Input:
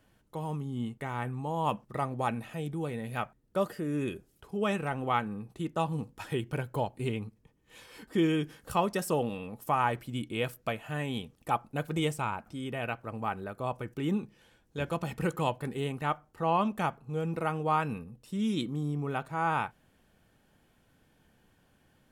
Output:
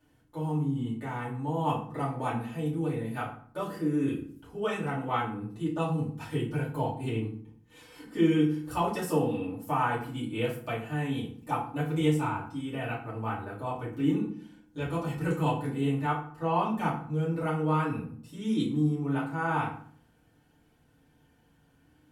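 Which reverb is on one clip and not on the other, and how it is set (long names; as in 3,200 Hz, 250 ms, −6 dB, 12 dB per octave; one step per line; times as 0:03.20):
feedback delay network reverb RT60 0.51 s, low-frequency decay 1.55×, high-frequency decay 0.7×, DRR −8 dB
level −9 dB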